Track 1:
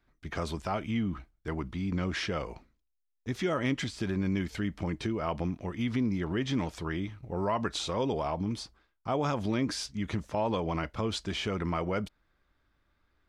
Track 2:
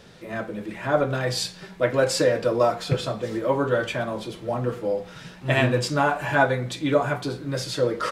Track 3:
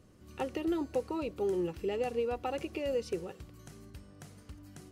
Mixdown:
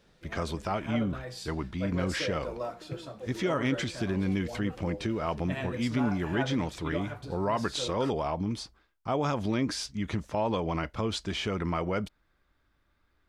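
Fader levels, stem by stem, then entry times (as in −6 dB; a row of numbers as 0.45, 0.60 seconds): +1.0, −15.5, −16.0 decibels; 0.00, 0.00, 2.25 seconds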